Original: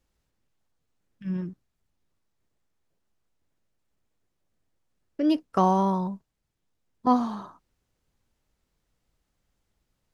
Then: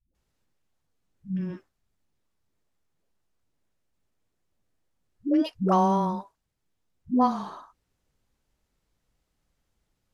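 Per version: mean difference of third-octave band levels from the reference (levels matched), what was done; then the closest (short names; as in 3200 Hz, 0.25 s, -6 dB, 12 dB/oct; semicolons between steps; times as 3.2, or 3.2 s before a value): 9.0 dB: dispersion highs, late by 0.149 s, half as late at 310 Hz; Vorbis 128 kbps 32000 Hz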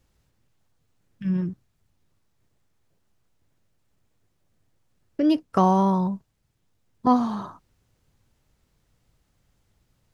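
1.5 dB: bell 110 Hz +7 dB 1.1 oct; in parallel at +1 dB: compressor, threshold -33 dBFS, peak gain reduction 16.5 dB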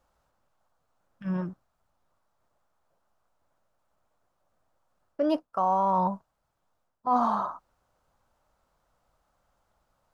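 4.5 dB: band shelf 890 Hz +13 dB; reverse; compressor 16:1, threshold -21 dBFS, peak gain reduction 16.5 dB; reverse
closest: second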